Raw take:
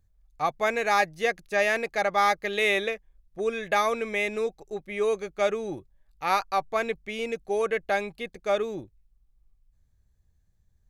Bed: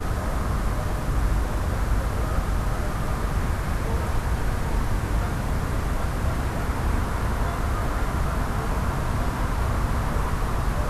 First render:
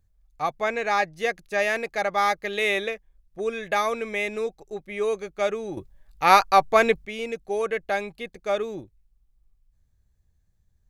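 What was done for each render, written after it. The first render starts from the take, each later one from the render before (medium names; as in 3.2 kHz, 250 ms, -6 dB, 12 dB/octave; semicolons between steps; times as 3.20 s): 0.61–1.17 s: distance through air 54 m; 5.77–7.05 s: gain +9 dB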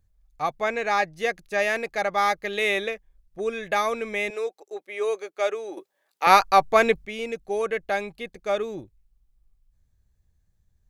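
4.30–6.27 s: high-pass 350 Hz 24 dB/octave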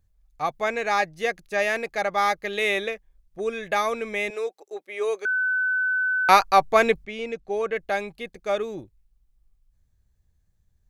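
0.54–1.07 s: treble shelf 6.4 kHz +4.5 dB; 5.25–6.29 s: bleep 1.51 kHz -20.5 dBFS; 7.04–7.76 s: distance through air 74 m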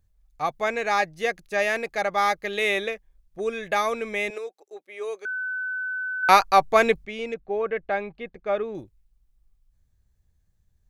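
4.38–6.23 s: gain -6 dB; 7.34–8.75 s: low-pass 2.3 kHz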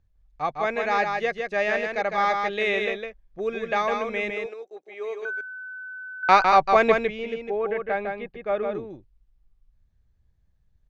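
distance through air 150 m; on a send: delay 156 ms -4.5 dB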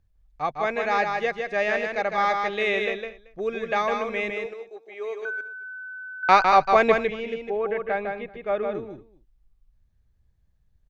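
delay 228 ms -20 dB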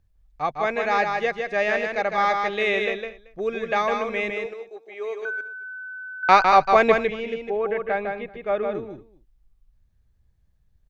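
trim +1.5 dB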